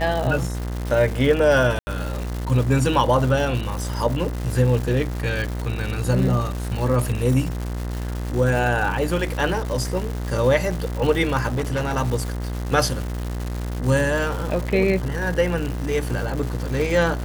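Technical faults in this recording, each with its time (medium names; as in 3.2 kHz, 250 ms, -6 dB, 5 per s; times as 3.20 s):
buzz 60 Hz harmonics 35 -27 dBFS
crackle 330 per s -27 dBFS
1.79–1.87 s: dropout 80 ms
11.52–11.94 s: clipped -19.5 dBFS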